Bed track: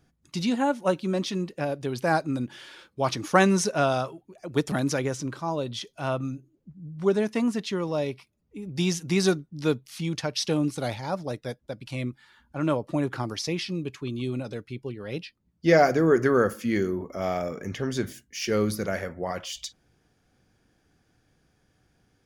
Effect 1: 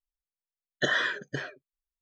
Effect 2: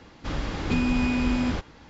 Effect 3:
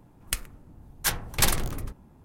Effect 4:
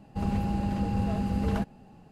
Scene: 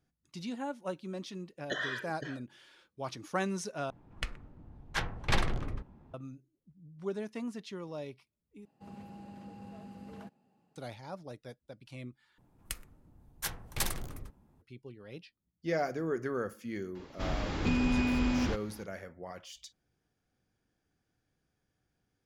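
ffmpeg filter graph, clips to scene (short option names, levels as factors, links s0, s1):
-filter_complex "[3:a]asplit=2[s0][s1];[0:a]volume=0.211[s2];[s0]lowpass=3200[s3];[4:a]highpass=170[s4];[2:a]asoftclip=type=tanh:threshold=0.178[s5];[s2]asplit=4[s6][s7][s8][s9];[s6]atrim=end=3.904[s10];[s3]atrim=end=2.24,asetpts=PTS-STARTPTS,volume=0.708[s11];[s7]atrim=start=6.136:end=8.654[s12];[s4]atrim=end=2.11,asetpts=PTS-STARTPTS,volume=0.141[s13];[s8]atrim=start=10.756:end=12.384[s14];[s1]atrim=end=2.24,asetpts=PTS-STARTPTS,volume=0.299[s15];[s9]atrim=start=14.616[s16];[1:a]atrim=end=2.01,asetpts=PTS-STARTPTS,volume=0.335,afade=t=in:d=0.004:c=hsin,afade=t=out:st=2.006:d=0.004:c=hsin,adelay=880[s17];[s5]atrim=end=1.89,asetpts=PTS-STARTPTS,volume=0.631,afade=t=in:d=0.004:c=hsin,afade=t=out:st=1.886:d=0.004:c=hsin,adelay=16950[s18];[s10][s11]acrossfade=d=0.004:c1=hsin:c2=hsin[s19];[s19][s12]acrossfade=d=0.004:c1=hsin:c2=hsin[s20];[s20][s13]acrossfade=d=0.004:c1=hsin:c2=hsin[s21];[s21][s14]acrossfade=d=0.004:c1=hsin:c2=hsin[s22];[s22][s15]acrossfade=d=0.004:c1=hsin:c2=hsin[s23];[s23][s16]acrossfade=d=0.004:c1=hsin:c2=hsin[s24];[s24][s17][s18]amix=inputs=3:normalize=0"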